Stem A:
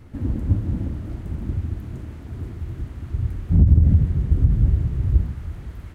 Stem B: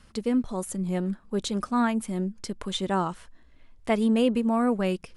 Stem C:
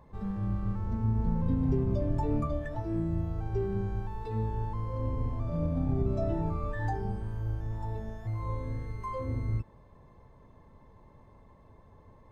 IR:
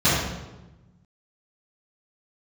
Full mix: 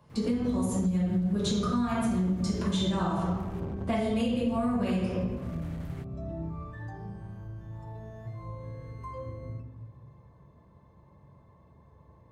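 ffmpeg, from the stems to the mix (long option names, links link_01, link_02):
-filter_complex "[0:a]acompressor=threshold=-20dB:ratio=6,volume=30.5dB,asoftclip=hard,volume=-30.5dB,adelay=100,volume=-1dB[link_01];[1:a]adynamicequalizer=threshold=0.00631:dfrequency=170:dqfactor=3.4:tfrequency=170:tqfactor=3.4:attack=5:release=100:ratio=0.375:range=3:mode=cutabove:tftype=bell,agate=range=-13dB:threshold=-43dB:ratio=16:detection=peak,volume=-6.5dB,asplit=2[link_02][link_03];[link_03]volume=-9dB[link_04];[2:a]acompressor=threshold=-33dB:ratio=6,volume=-5dB,asplit=2[link_05][link_06];[link_06]volume=-21.5dB[link_07];[3:a]atrim=start_sample=2205[link_08];[link_04][link_07]amix=inputs=2:normalize=0[link_09];[link_09][link_08]afir=irnorm=-1:irlink=0[link_10];[link_01][link_02][link_05][link_10]amix=inputs=4:normalize=0,acrossover=split=140|3000[link_11][link_12][link_13];[link_12]acompressor=threshold=-23dB:ratio=6[link_14];[link_11][link_14][link_13]amix=inputs=3:normalize=0,highpass=frequency=110:poles=1,acompressor=threshold=-24dB:ratio=6"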